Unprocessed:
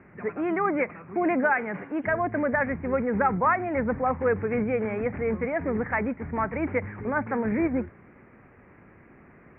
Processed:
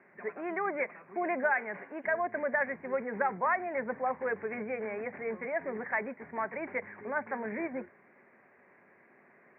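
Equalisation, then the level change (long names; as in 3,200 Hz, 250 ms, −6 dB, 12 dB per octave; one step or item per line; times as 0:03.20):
loudspeaker in its box 280–2,100 Hz, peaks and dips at 300 Hz −8 dB, 860 Hz −3 dB, 1,300 Hz −9 dB
spectral tilt +2 dB per octave
notch filter 480 Hz, Q 12
−2.0 dB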